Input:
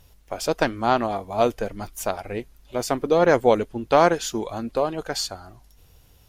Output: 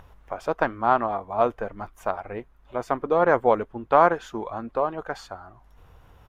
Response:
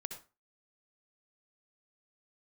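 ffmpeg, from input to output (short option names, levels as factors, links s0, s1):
-af "equalizer=f=3800:t=o:w=0.74:g=12,acompressor=mode=upward:threshold=0.0178:ratio=2.5,firequalizer=gain_entry='entry(280,0);entry(1100,9);entry(4000,-23);entry(6200,-16)':delay=0.05:min_phase=1,volume=0.531"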